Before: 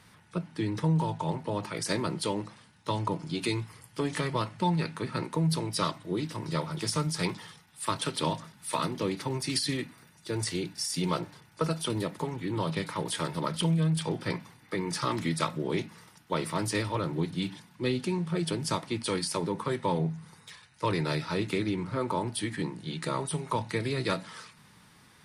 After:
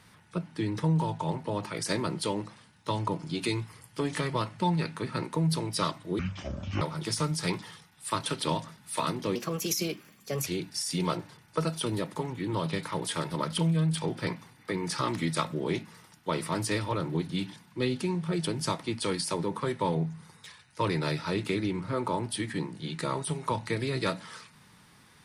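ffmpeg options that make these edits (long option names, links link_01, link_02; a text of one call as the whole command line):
ffmpeg -i in.wav -filter_complex "[0:a]asplit=5[link_01][link_02][link_03][link_04][link_05];[link_01]atrim=end=6.194[link_06];[link_02]atrim=start=6.19:end=6.57,asetpts=PTS-STARTPTS,asetrate=26901,aresample=44100,atrim=end_sample=27472,asetpts=PTS-STARTPTS[link_07];[link_03]atrim=start=6.566:end=9.114[link_08];[link_04]atrim=start=9.11:end=10.5,asetpts=PTS-STARTPTS,asetrate=55125,aresample=44100,atrim=end_sample=49039,asetpts=PTS-STARTPTS[link_09];[link_05]atrim=start=10.496[link_10];[link_06][link_07]acrossfade=duration=0.004:curve1=hsin:curve2=hsin[link_11];[link_11][link_08]acrossfade=duration=0.004:curve1=hsin:curve2=hsin[link_12];[link_12][link_09]acrossfade=duration=0.004:curve1=hsin:curve2=hsin[link_13];[link_13][link_10]acrossfade=duration=0.004:curve1=hsin:curve2=hsin" out.wav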